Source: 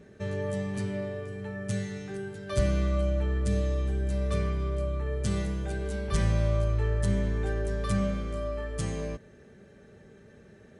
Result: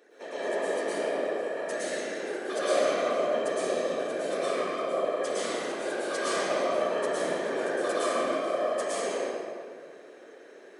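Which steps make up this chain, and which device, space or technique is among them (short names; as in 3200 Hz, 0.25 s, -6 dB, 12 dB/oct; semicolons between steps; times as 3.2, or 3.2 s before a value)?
whispering ghost (whisperiser; HPF 390 Hz 24 dB/oct; reverb RT60 2.0 s, pre-delay 0.105 s, DRR -9 dB); gain -2 dB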